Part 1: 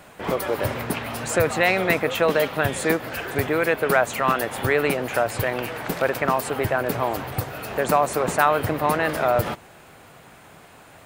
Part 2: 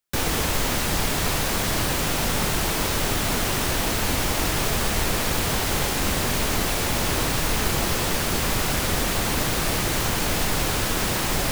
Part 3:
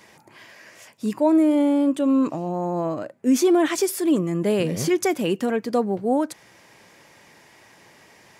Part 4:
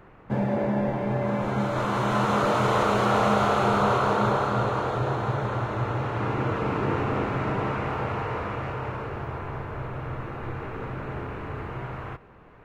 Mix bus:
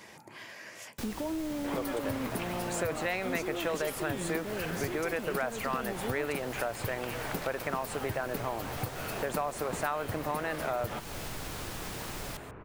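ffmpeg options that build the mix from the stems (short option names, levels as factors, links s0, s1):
-filter_complex "[0:a]adelay=1450,volume=0.944[s0];[1:a]adelay=850,volume=0.178[s1];[2:a]alimiter=limit=0.0794:level=0:latency=1,volume=1[s2];[3:a]aemphasis=mode=reproduction:type=75kf,acompressor=threshold=0.0224:ratio=6,adelay=1200,volume=0.335[s3];[s0][s1][s2][s3]amix=inputs=4:normalize=0,acompressor=threshold=0.0178:ratio=2.5"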